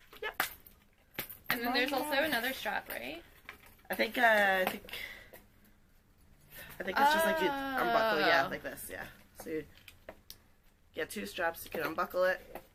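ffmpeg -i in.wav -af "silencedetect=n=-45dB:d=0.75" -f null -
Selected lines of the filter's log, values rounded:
silence_start: 5.37
silence_end: 6.53 | silence_duration: 1.16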